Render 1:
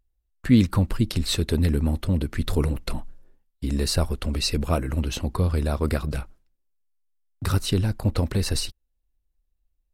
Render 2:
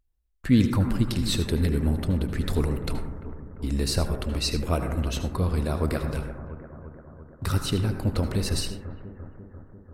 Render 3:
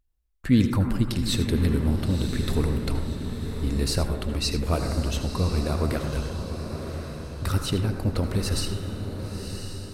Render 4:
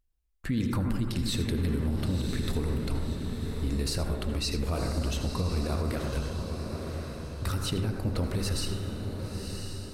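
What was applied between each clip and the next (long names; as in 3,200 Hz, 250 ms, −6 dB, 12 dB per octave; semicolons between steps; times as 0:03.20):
bucket-brigade delay 344 ms, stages 4,096, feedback 67%, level −13 dB; on a send at −6.5 dB: convolution reverb RT60 0.90 s, pre-delay 67 ms; on the sum: level −2.5 dB
feedback delay with all-pass diffusion 1,038 ms, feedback 46%, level −8 dB
hum removal 50.19 Hz, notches 37; brickwall limiter −18.5 dBFS, peak gain reduction 9.5 dB; level −2 dB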